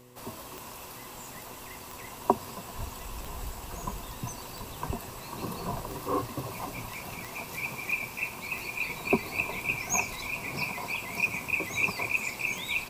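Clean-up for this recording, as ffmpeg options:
-af "adeclick=t=4,bandreject=f=123.7:t=h:w=4,bandreject=f=247.4:t=h:w=4,bandreject=f=371.1:t=h:w=4,bandreject=f=494.8:t=h:w=4"

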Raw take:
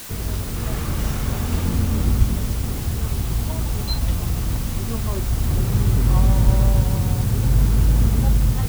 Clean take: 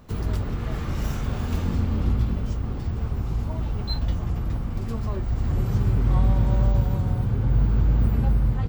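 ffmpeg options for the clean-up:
-filter_complex "[0:a]asplit=3[s0][s1][s2];[s0]afade=t=out:st=2.18:d=0.02[s3];[s1]highpass=f=140:w=0.5412,highpass=f=140:w=1.3066,afade=t=in:st=2.18:d=0.02,afade=t=out:st=2.3:d=0.02[s4];[s2]afade=t=in:st=2.3:d=0.02[s5];[s3][s4][s5]amix=inputs=3:normalize=0,asplit=3[s6][s7][s8];[s6]afade=t=out:st=6.45:d=0.02[s9];[s7]highpass=f=140:w=0.5412,highpass=f=140:w=1.3066,afade=t=in:st=6.45:d=0.02,afade=t=out:st=6.57:d=0.02[s10];[s8]afade=t=in:st=6.57:d=0.02[s11];[s9][s10][s11]amix=inputs=3:normalize=0,afwtdn=0.016,asetnsamples=n=441:p=0,asendcmd='0.56 volume volume -3.5dB',volume=1"

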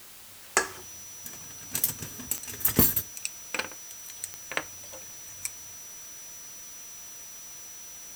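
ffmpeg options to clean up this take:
-af "adeclick=t=4,bandreject=f=5900:w=30,afwtdn=0.004"

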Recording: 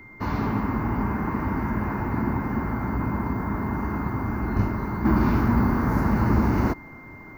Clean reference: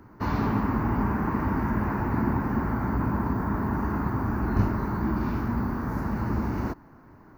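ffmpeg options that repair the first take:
-af "bandreject=f=2100:w=30,agate=range=0.0891:threshold=0.02,asetnsamples=n=441:p=0,asendcmd='5.05 volume volume -7dB',volume=1"

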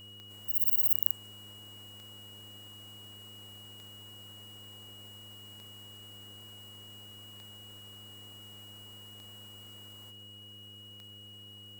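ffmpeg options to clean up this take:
-af "adeclick=t=4,bandreject=f=102.5:t=h:w=4,bandreject=f=205:t=h:w=4,bandreject=f=307.5:t=h:w=4,bandreject=f=410:t=h:w=4,bandreject=f=512.5:t=h:w=4,bandreject=f=2900:w=30"

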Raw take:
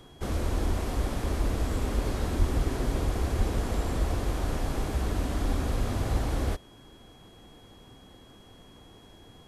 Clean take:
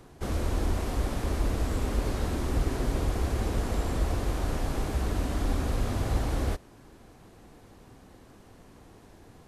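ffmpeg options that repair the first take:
-filter_complex "[0:a]bandreject=f=3300:w=30,asplit=3[s0][s1][s2];[s0]afade=t=out:st=2.38:d=0.02[s3];[s1]highpass=f=140:w=0.5412,highpass=f=140:w=1.3066,afade=t=in:st=2.38:d=0.02,afade=t=out:st=2.5:d=0.02[s4];[s2]afade=t=in:st=2.5:d=0.02[s5];[s3][s4][s5]amix=inputs=3:normalize=0,asplit=3[s6][s7][s8];[s6]afade=t=out:st=3.37:d=0.02[s9];[s7]highpass=f=140:w=0.5412,highpass=f=140:w=1.3066,afade=t=in:st=3.37:d=0.02,afade=t=out:st=3.49:d=0.02[s10];[s8]afade=t=in:st=3.49:d=0.02[s11];[s9][s10][s11]amix=inputs=3:normalize=0"

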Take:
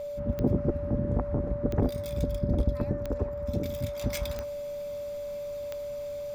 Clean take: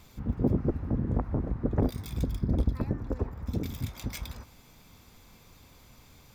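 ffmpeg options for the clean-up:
-af "adeclick=t=4,bandreject=f=580:w=30,asetnsamples=n=441:p=0,asendcmd='4.01 volume volume -4dB',volume=1"

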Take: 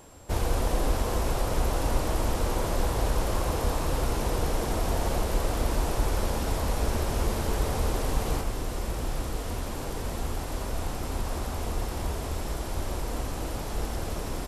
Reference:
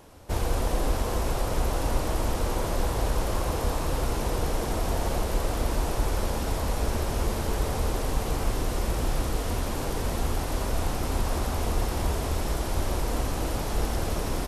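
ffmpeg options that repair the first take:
-af "bandreject=f=7500:w=30,asetnsamples=n=441:p=0,asendcmd='8.41 volume volume 4dB',volume=1"

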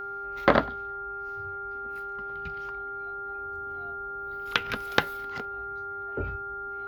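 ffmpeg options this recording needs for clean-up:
-af "bandreject=f=398.2:t=h:w=4,bandreject=f=796.4:t=h:w=4,bandreject=f=1194.6:t=h:w=4,bandreject=f=1400:w=30"

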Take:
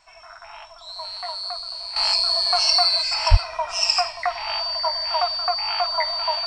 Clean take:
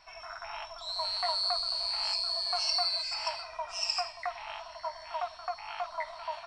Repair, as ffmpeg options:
-filter_complex "[0:a]bandreject=f=4600:w=30,asplit=3[s0][s1][s2];[s0]afade=t=out:st=3.3:d=0.02[s3];[s1]highpass=f=140:w=0.5412,highpass=f=140:w=1.3066,afade=t=in:st=3.3:d=0.02,afade=t=out:st=3.42:d=0.02[s4];[s2]afade=t=in:st=3.42:d=0.02[s5];[s3][s4][s5]amix=inputs=3:normalize=0,agate=range=0.0891:threshold=0.02,asetnsamples=n=441:p=0,asendcmd='1.96 volume volume -11.5dB',volume=1"

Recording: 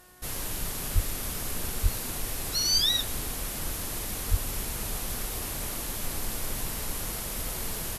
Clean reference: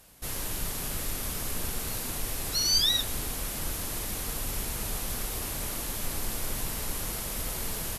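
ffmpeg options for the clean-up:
-filter_complex "[0:a]bandreject=f=363.3:t=h:w=4,bandreject=f=726.6:t=h:w=4,bandreject=f=1089.9:t=h:w=4,bandreject=f=1453.2:t=h:w=4,bandreject=f=1816.5:t=h:w=4,asplit=3[s0][s1][s2];[s0]afade=t=out:st=0.94:d=0.02[s3];[s1]highpass=f=140:w=0.5412,highpass=f=140:w=1.3066,afade=t=in:st=0.94:d=0.02,afade=t=out:st=1.06:d=0.02[s4];[s2]afade=t=in:st=1.06:d=0.02[s5];[s3][s4][s5]amix=inputs=3:normalize=0,asplit=3[s6][s7][s8];[s6]afade=t=out:st=1.82:d=0.02[s9];[s7]highpass=f=140:w=0.5412,highpass=f=140:w=1.3066,afade=t=in:st=1.82:d=0.02,afade=t=out:st=1.94:d=0.02[s10];[s8]afade=t=in:st=1.94:d=0.02[s11];[s9][s10][s11]amix=inputs=3:normalize=0,asplit=3[s12][s13][s14];[s12]afade=t=out:st=4.3:d=0.02[s15];[s13]highpass=f=140:w=0.5412,highpass=f=140:w=1.3066,afade=t=in:st=4.3:d=0.02,afade=t=out:st=4.42:d=0.02[s16];[s14]afade=t=in:st=4.42:d=0.02[s17];[s15][s16][s17]amix=inputs=3:normalize=0"

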